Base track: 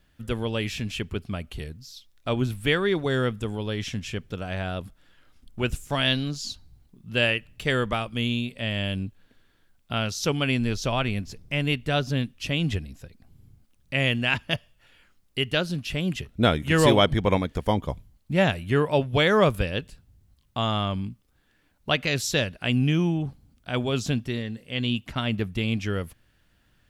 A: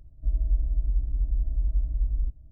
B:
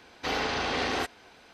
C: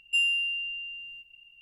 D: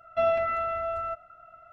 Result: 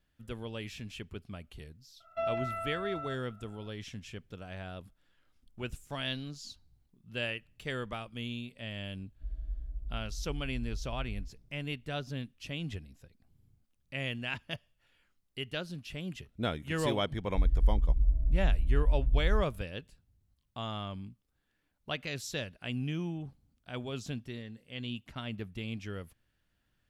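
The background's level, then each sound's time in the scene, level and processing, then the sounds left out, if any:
base track -12.5 dB
2.00 s: add D -9 dB
8.98 s: add A -14 dB
17.12 s: add A -1 dB + bands offset in time lows, highs 670 ms, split 450 Hz
not used: B, C

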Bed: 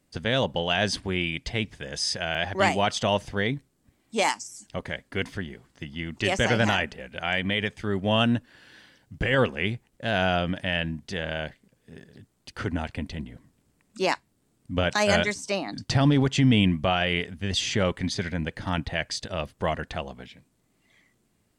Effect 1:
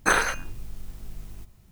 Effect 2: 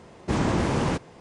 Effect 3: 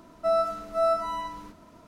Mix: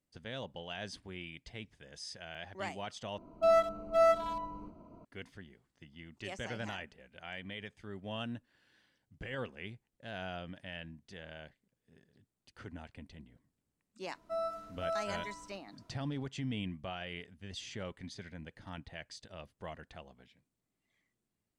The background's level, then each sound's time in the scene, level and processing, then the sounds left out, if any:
bed -18 dB
3.18 s: replace with 3 -1 dB + local Wiener filter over 25 samples
14.06 s: add 3 -12.5 dB
not used: 1, 2

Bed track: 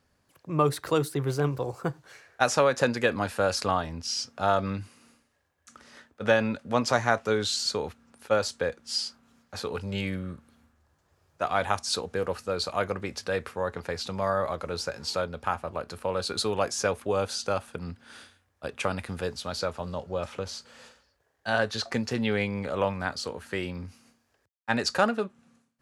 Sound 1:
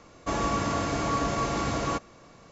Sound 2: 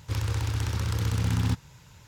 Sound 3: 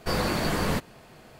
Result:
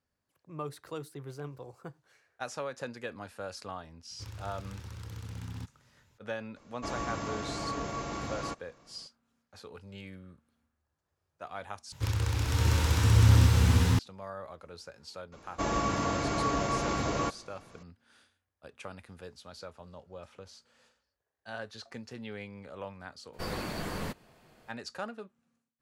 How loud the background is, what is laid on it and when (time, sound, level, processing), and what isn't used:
bed track -15 dB
4.11 s: add 2 -15.5 dB
6.56 s: add 1 -8.5 dB
11.92 s: replace with 2 -1.5 dB + swelling reverb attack 640 ms, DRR -5.5 dB
15.32 s: add 1 -2.5 dB
23.33 s: add 3 -10 dB

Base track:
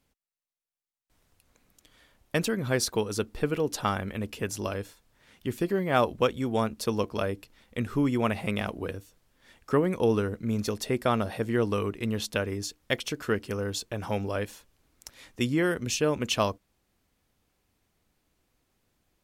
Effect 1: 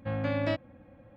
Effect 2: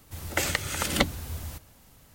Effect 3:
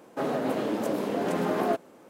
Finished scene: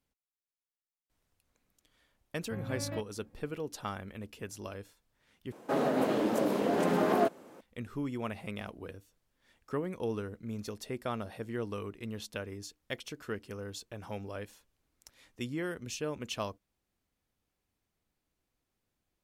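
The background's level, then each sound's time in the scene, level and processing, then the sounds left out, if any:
base track -10.5 dB
2.45 s: add 1 -12 dB + tone controls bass +5 dB, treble -12 dB
5.52 s: replace with 3 -0.5 dB
not used: 2

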